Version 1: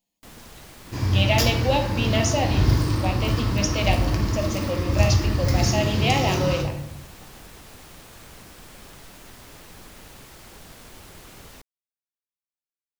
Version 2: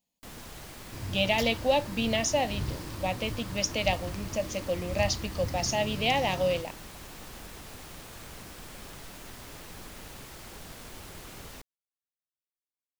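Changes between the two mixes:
second sound −9.0 dB
reverb: off

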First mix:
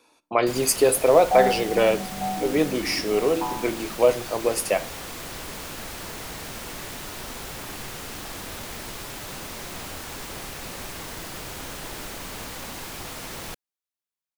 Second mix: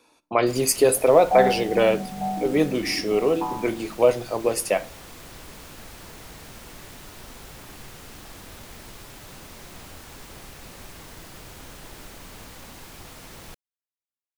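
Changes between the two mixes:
first sound −8.0 dB
master: add low-shelf EQ 180 Hz +5.5 dB

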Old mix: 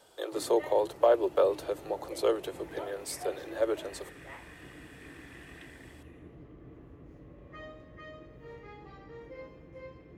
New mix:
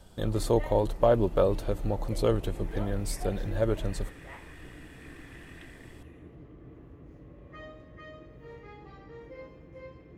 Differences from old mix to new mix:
speech: remove Butterworth high-pass 330 Hz 96 dB per octave
master: add low-shelf EQ 180 Hz +3 dB

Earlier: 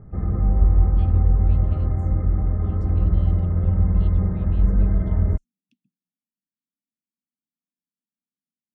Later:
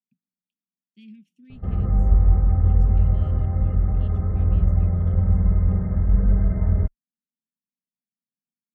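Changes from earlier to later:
background: entry +1.50 s
master: add thirty-one-band graphic EQ 315 Hz −8 dB, 1,000 Hz −3 dB, 4,000 Hz −9 dB

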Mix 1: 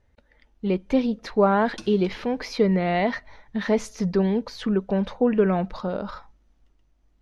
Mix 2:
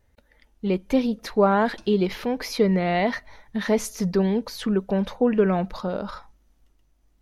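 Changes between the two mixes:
speech: remove high-frequency loss of the air 81 metres
background −10.0 dB

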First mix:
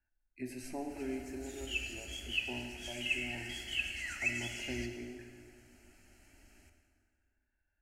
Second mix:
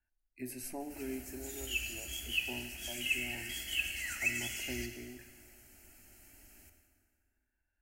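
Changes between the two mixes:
speech: send −9.0 dB
master: remove high-frequency loss of the air 66 metres

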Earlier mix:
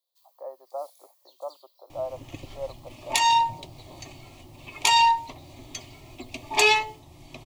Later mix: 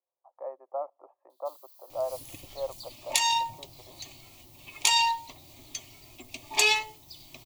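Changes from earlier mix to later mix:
first sound: entry +1.30 s
second sound −9.0 dB
master: add high-shelf EQ 2,600 Hz +11.5 dB

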